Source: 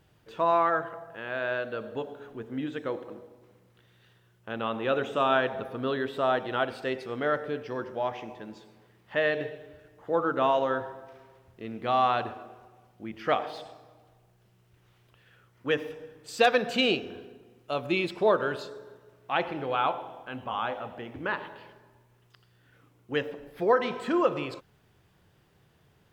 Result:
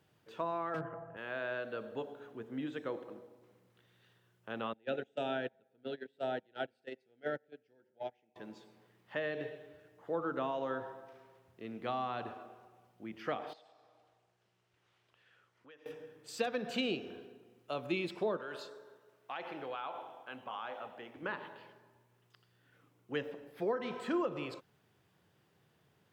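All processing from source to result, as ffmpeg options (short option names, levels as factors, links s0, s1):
-filter_complex "[0:a]asettb=1/sr,asplit=3[s0][s1][s2];[s0]atrim=end=0.744[s3];[s1]atrim=start=0.74:end=1.17,asetpts=PTS-STARTPTS,afade=t=in:d=0.004:c=qsin,afade=t=out:st=0.426:d=0.004:c=qsin,asuperstop=centerf=4200:order=4:qfactor=1.5,aemphasis=mode=reproduction:type=riaa,aeval=exprs='clip(val(0),-1,0.0668)':c=same[s4];[s2]atrim=start=1.166[s5];[s3][s4]acrossfade=d=0.004:c1=hsin:c2=qsin[s6];[s6][s5]acrossfade=d=0.004:c1=qsin:c2=hsin,asettb=1/sr,asplit=3[s7][s8][s9];[s7]atrim=end=4.734[s10];[s8]atrim=start=4.73:end=8.36,asetpts=PTS-STARTPTS,afade=t=in:d=0.004:c=qsin,afade=t=out:st=3.626:d=0.004:c=qsin,agate=range=0.0398:threshold=0.0398:ratio=16:release=100:detection=peak,asuperstop=centerf=1100:order=4:qfactor=2[s11];[s9]atrim=start=8.356[s12];[s10][s11]acrossfade=d=0.004:c1=hsin:c2=qsin[s13];[s13][s12]acrossfade=d=0.004:c1=qsin:c2=hsin,asettb=1/sr,asplit=3[s14][s15][s16];[s14]atrim=end=13.534[s17];[s15]atrim=start=13.53:end=15.86,asetpts=PTS-STARTPTS,afade=t=in:d=0.004:c=qsin,afade=t=out:st=2.326:d=0.004:c=qsin,lowpass=7200,equalizer=f=150:t=o:w=2.6:g=-9.5,acompressor=threshold=0.00158:ratio=3:attack=3.2:release=140:knee=1:detection=peak[s18];[s16]atrim=start=15.856[s19];[s17][s18]acrossfade=d=0.004:c1=hsin:c2=qsin[s20];[s20][s19]acrossfade=d=0.004:c1=qsin:c2=hsin,asettb=1/sr,asplit=3[s21][s22][s23];[s21]atrim=end=18.374[s24];[s22]atrim=start=18.37:end=21.22,asetpts=PTS-STARTPTS,afade=t=in:d=0.004:c=qsin,afade=t=out:st=2.846:d=0.004:c=qsin,lowshelf=f=260:g=-11.5,acompressor=threshold=0.0282:ratio=4:attack=3.2:release=140:knee=1:detection=peak[s25];[s23]atrim=start=21.216[s26];[s24][s25]acrossfade=d=0.004:c1=hsin:c2=qsin[s27];[s27][s26]acrossfade=d=0.004:c1=qsin:c2=hsin,acrossover=split=350[s28][s29];[s29]acompressor=threshold=0.0398:ratio=10[s30];[s28][s30]amix=inputs=2:normalize=0,highpass=120,volume=0.501"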